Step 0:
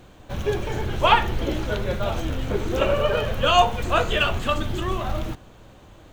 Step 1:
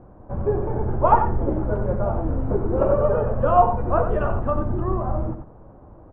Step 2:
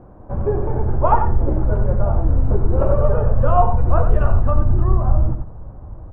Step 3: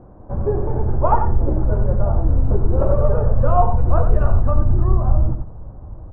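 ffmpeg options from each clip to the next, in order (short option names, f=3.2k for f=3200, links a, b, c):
-af "lowpass=f=1.1k:w=0.5412,lowpass=f=1.1k:w=1.3066,aecho=1:1:91:0.398,volume=2dB"
-filter_complex "[0:a]asubboost=boost=4:cutoff=140,asplit=2[a][b];[b]acompressor=threshold=-19dB:ratio=6,volume=-2dB[c];[a][c]amix=inputs=2:normalize=0,volume=-2dB"
-af "lowpass=f=1.4k:p=1"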